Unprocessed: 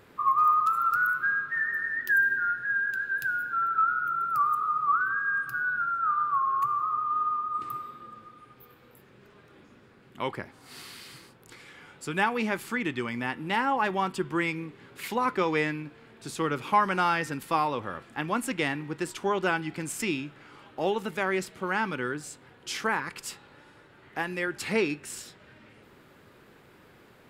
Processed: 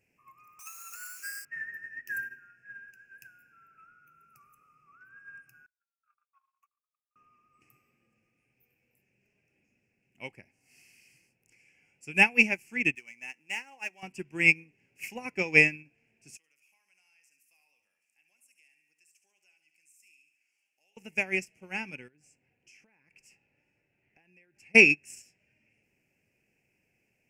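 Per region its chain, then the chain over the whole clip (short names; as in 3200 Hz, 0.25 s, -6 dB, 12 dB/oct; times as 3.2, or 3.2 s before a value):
0.59–1.45 switching spikes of -24.5 dBFS + HPF 330 Hz 24 dB/oct + Doppler distortion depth 0.61 ms
5.66–7.16 gate -24 dBFS, range -43 dB + steep high-pass 660 Hz + bell 12000 Hz -6.5 dB 1.8 oct
12.95–14.03 median filter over 9 samples + HPF 1200 Hz 6 dB/oct
16.37–20.97 differentiator + compressor 2:1, threshold -57 dBFS + feedback echo 70 ms, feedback 57%, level -9 dB
22.08–24.75 high shelf 4200 Hz -10.5 dB + compressor 12:1, threshold -40 dBFS
whole clip: EQ curve 200 Hz 0 dB, 410 Hz -5 dB, 750 Hz -2 dB, 1200 Hz -20 dB, 2600 Hz +14 dB, 3700 Hz -23 dB, 5400 Hz +9 dB, 11000 Hz +3 dB; upward expander 2.5:1, over -38 dBFS; gain +7.5 dB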